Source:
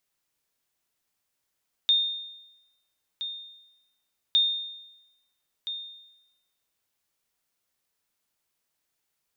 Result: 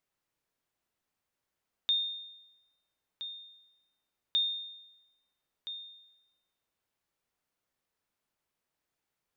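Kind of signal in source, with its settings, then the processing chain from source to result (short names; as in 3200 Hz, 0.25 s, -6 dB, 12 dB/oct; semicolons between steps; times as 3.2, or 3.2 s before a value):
sonar ping 3650 Hz, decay 0.96 s, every 2.46 s, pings 2, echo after 1.32 s, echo -12 dB -15.5 dBFS
high shelf 2900 Hz -10.5 dB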